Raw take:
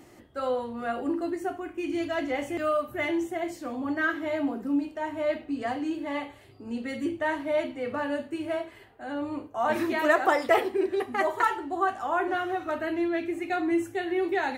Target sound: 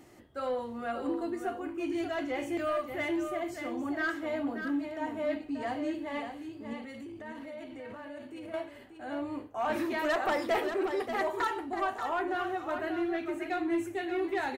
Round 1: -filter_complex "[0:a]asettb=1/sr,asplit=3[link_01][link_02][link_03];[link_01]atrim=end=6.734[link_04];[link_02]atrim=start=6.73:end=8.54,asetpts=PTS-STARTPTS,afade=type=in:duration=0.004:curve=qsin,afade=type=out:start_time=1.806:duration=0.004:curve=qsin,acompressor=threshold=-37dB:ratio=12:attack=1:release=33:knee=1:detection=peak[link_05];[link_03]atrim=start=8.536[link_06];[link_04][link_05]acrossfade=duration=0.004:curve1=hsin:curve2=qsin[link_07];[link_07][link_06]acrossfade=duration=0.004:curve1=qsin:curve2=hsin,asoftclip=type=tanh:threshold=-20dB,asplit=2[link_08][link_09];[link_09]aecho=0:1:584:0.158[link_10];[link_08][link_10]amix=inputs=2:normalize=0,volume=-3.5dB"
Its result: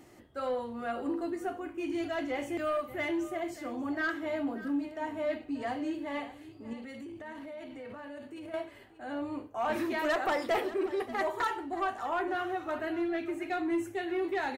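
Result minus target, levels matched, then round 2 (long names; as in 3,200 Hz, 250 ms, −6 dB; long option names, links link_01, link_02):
echo-to-direct −8 dB
-filter_complex "[0:a]asettb=1/sr,asplit=3[link_01][link_02][link_03];[link_01]atrim=end=6.734[link_04];[link_02]atrim=start=6.73:end=8.54,asetpts=PTS-STARTPTS,afade=type=in:duration=0.004:curve=qsin,afade=type=out:start_time=1.806:duration=0.004:curve=qsin,acompressor=threshold=-37dB:ratio=12:attack=1:release=33:knee=1:detection=peak[link_05];[link_03]atrim=start=8.536[link_06];[link_04][link_05]acrossfade=duration=0.004:curve1=hsin:curve2=qsin[link_07];[link_07][link_06]acrossfade=duration=0.004:curve1=qsin:curve2=hsin,asoftclip=type=tanh:threshold=-20dB,asplit=2[link_08][link_09];[link_09]aecho=0:1:584:0.398[link_10];[link_08][link_10]amix=inputs=2:normalize=0,volume=-3.5dB"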